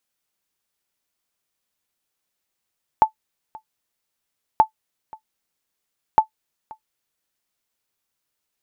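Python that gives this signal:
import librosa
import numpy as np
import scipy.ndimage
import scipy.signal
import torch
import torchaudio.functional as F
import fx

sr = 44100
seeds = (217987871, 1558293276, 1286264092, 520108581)

y = fx.sonar_ping(sr, hz=874.0, decay_s=0.1, every_s=1.58, pings=3, echo_s=0.53, echo_db=-24.5, level_db=-3.5)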